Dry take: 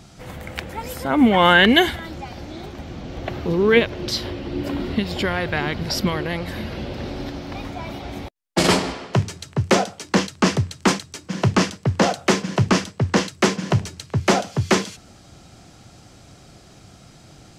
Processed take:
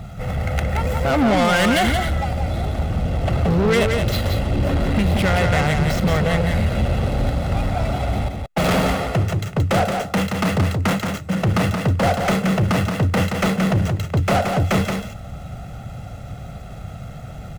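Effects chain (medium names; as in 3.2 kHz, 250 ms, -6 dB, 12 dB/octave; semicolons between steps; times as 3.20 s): median filter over 9 samples; bass shelf 170 Hz +6 dB; comb 1.5 ms, depth 69%; peak limiter -9 dBFS, peak gain reduction 8 dB; saturation -22 dBFS, distortion -7 dB; on a send: delay 175 ms -5 dB; on the sum: trim +7 dB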